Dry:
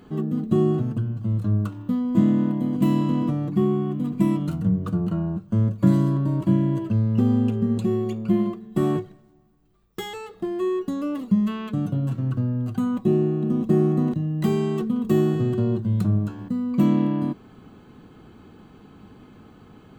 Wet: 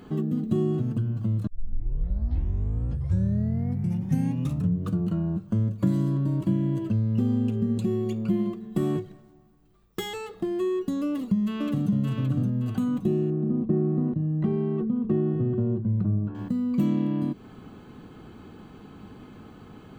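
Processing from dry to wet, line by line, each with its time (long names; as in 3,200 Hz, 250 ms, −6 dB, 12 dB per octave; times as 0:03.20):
0:01.47: tape start 3.40 s
0:11.03–0:11.92: delay throw 570 ms, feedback 30%, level −2 dB
0:13.30–0:16.35: low-pass filter 1,300 Hz
whole clip: dynamic equaliser 990 Hz, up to −6 dB, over −39 dBFS, Q 0.72; downward compressor 2 to 1, threshold −27 dBFS; level +2 dB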